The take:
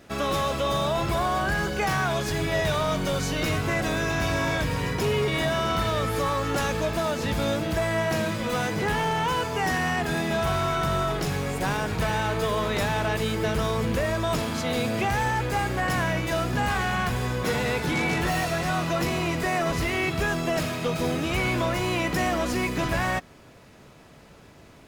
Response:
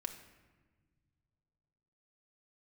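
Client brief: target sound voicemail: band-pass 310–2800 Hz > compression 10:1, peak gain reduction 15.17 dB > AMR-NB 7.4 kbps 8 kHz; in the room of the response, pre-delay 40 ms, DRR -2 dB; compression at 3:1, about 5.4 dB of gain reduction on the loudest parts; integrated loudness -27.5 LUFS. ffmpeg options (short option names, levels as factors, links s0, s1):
-filter_complex "[0:a]acompressor=threshold=0.0355:ratio=3,asplit=2[s0][s1];[1:a]atrim=start_sample=2205,adelay=40[s2];[s1][s2]afir=irnorm=-1:irlink=0,volume=1.5[s3];[s0][s3]amix=inputs=2:normalize=0,highpass=310,lowpass=2800,acompressor=threshold=0.0126:ratio=10,volume=5.96" -ar 8000 -c:a libopencore_amrnb -b:a 7400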